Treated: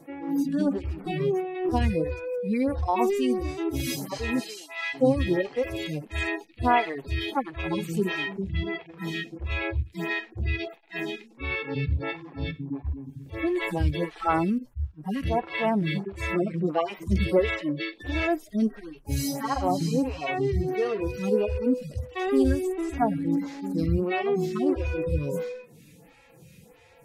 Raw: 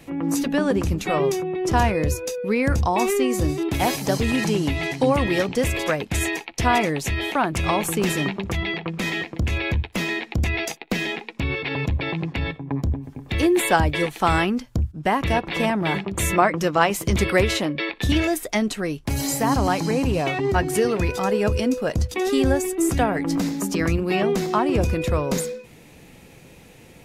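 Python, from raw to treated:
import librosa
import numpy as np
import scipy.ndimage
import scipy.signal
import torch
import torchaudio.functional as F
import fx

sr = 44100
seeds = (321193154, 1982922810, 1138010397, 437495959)

y = fx.hpss_only(x, sr, part='harmonic')
y = fx.highpass(y, sr, hz=fx.line((4.39, 460.0), (4.93, 1100.0)), slope=24, at=(4.39, 4.93), fade=0.02)
y = fx.stagger_phaser(y, sr, hz=1.5)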